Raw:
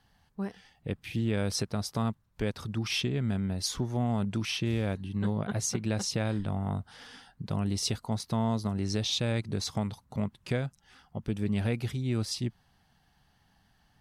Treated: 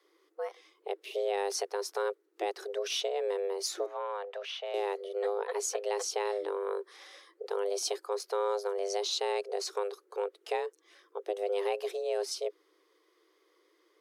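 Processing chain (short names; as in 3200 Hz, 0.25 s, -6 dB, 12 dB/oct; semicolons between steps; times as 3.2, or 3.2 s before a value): 3.86–4.74 three-band isolator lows -15 dB, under 250 Hz, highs -19 dB, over 3400 Hz; frequency shift +300 Hz; gain -2.5 dB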